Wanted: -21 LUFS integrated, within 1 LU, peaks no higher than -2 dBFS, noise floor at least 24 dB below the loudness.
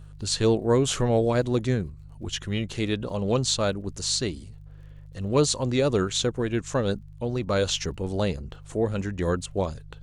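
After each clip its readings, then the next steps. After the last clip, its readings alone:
tick rate 39 per s; hum 50 Hz; highest harmonic 150 Hz; hum level -42 dBFS; loudness -26.0 LUFS; peak level -10.0 dBFS; loudness target -21.0 LUFS
-> de-click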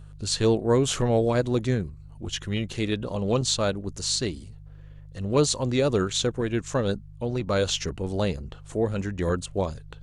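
tick rate 0.20 per s; hum 50 Hz; highest harmonic 150 Hz; hum level -42 dBFS
-> de-hum 50 Hz, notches 3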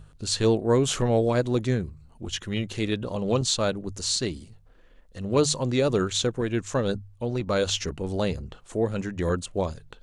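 hum not found; loudness -26.0 LUFS; peak level -10.5 dBFS; loudness target -21.0 LUFS
-> trim +5 dB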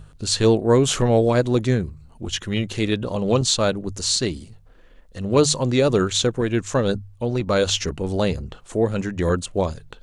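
loudness -21.0 LUFS; peak level -5.5 dBFS; noise floor -49 dBFS

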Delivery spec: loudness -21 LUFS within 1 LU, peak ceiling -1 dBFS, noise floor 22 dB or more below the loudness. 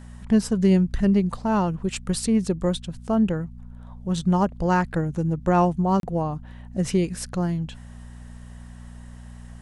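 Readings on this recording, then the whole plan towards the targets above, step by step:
dropouts 1; longest dropout 32 ms; hum 60 Hz; highest harmonic 240 Hz; hum level -36 dBFS; loudness -23.5 LUFS; peak level -7.5 dBFS; loudness target -21.0 LUFS
-> interpolate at 6.00 s, 32 ms; de-hum 60 Hz, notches 4; trim +2.5 dB

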